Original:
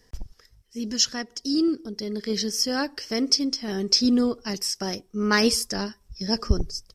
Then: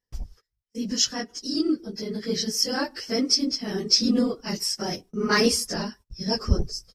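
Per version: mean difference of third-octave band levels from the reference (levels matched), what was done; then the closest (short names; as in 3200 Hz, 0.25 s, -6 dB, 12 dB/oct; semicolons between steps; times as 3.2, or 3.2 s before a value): 2.5 dB: phase scrambler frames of 50 ms; gate -46 dBFS, range -28 dB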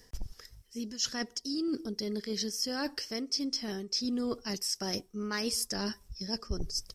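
4.0 dB: high shelf 5500 Hz +6 dB; reverse; compressor 6:1, threshold -34 dBFS, peak gain reduction 21 dB; reverse; gain +2.5 dB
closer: first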